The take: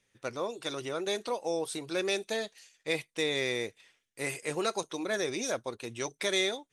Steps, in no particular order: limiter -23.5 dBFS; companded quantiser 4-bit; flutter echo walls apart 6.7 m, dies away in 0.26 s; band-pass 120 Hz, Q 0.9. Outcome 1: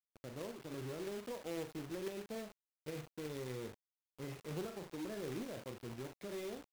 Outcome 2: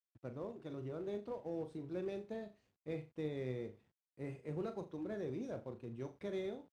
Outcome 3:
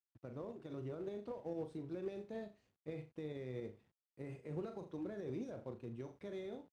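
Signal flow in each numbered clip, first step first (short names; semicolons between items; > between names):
flutter echo > limiter > band-pass > companded quantiser; flutter echo > companded quantiser > band-pass > limiter; flutter echo > companded quantiser > limiter > band-pass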